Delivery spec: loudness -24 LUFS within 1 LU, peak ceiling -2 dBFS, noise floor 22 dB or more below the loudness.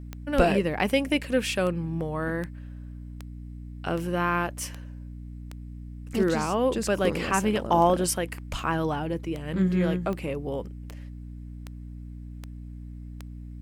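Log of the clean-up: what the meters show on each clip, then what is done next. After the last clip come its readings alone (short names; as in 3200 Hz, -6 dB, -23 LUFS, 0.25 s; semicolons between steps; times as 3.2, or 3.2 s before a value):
clicks 18; hum 60 Hz; harmonics up to 300 Hz; hum level -37 dBFS; loudness -26.5 LUFS; peak -7.5 dBFS; loudness target -24.0 LUFS
-> de-click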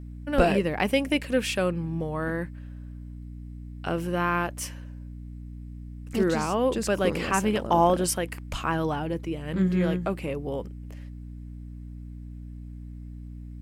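clicks 0; hum 60 Hz; harmonics up to 300 Hz; hum level -37 dBFS
-> de-hum 60 Hz, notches 5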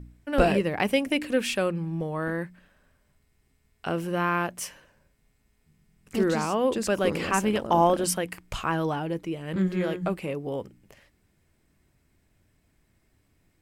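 hum none; loudness -27.0 LUFS; peak -7.0 dBFS; loudness target -24.0 LUFS
-> gain +3 dB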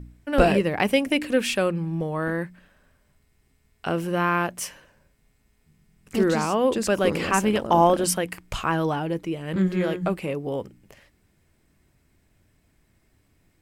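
loudness -24.0 LUFS; peak -4.0 dBFS; noise floor -66 dBFS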